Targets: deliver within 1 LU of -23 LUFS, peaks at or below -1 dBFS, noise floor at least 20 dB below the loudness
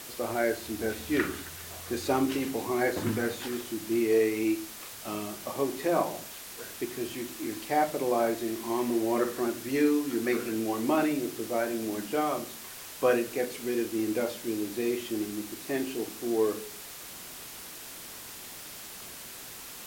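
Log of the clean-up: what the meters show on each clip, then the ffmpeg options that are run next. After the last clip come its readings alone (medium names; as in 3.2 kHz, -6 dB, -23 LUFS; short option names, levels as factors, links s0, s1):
noise floor -44 dBFS; noise floor target -51 dBFS; loudness -30.5 LUFS; peak level -13.0 dBFS; loudness target -23.0 LUFS
-> -af "afftdn=nr=7:nf=-44"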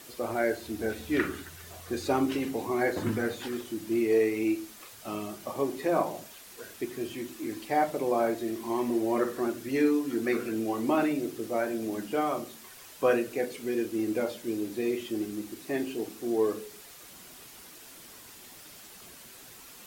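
noise floor -50 dBFS; loudness -30.0 LUFS; peak level -13.0 dBFS; loudness target -23.0 LUFS
-> -af "volume=2.24"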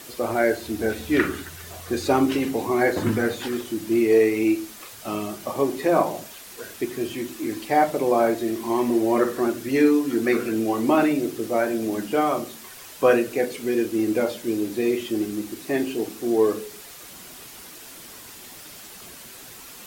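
loudness -23.0 LUFS; peak level -6.0 dBFS; noise floor -43 dBFS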